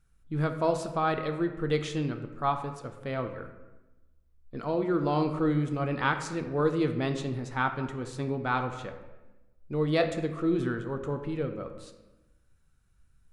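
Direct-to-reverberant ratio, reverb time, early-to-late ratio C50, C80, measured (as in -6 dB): 6.0 dB, 1.1 s, 9.0 dB, 11.0 dB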